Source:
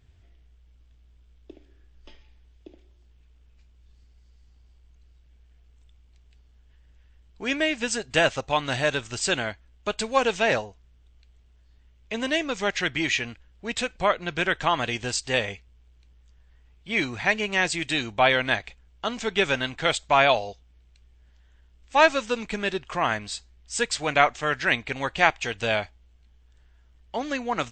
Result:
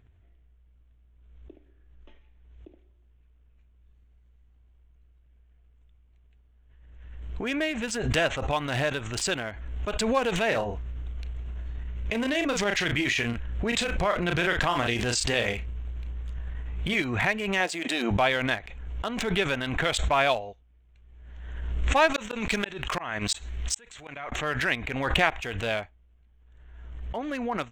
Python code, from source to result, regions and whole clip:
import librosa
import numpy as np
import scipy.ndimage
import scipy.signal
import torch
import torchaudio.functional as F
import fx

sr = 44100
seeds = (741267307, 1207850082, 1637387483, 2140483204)

y = fx.chain(x, sr, fx.tremolo_shape(shape='triangle', hz=10.0, depth_pct=80),
    fx.doubler(ms=34.0, db=-10),
    fx.env_flatten(amount_pct=70), at=(10.47, 17.02))
y = fx.chain(y, sr, fx.brickwall_highpass(low_hz=170.0),
    fx.peak_eq(hz=650.0, db=6.5, octaves=1.1), at=(17.6, 18.11))
y = fx.chain(y, sr, fx.high_shelf(hz=2000.0, db=10.0),
    fx.leveller(passes=1),
    fx.gate_flip(shuts_db=-10.0, range_db=-36), at=(22.14, 24.32))
y = fx.wiener(y, sr, points=9)
y = fx.notch(y, sr, hz=840.0, q=22.0)
y = fx.pre_swell(y, sr, db_per_s=36.0)
y = y * 10.0 ** (-4.0 / 20.0)